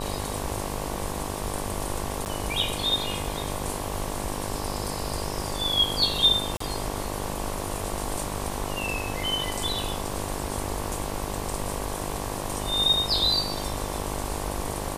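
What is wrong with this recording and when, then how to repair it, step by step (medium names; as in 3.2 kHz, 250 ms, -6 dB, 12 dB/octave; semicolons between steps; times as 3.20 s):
buzz 50 Hz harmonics 23 -34 dBFS
2.25–2.26 s: dropout 9.8 ms
6.57–6.60 s: dropout 34 ms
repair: de-hum 50 Hz, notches 23; interpolate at 2.25 s, 9.8 ms; interpolate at 6.57 s, 34 ms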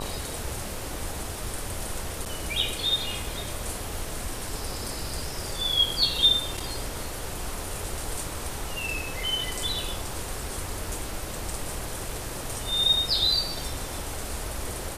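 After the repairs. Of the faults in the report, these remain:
nothing left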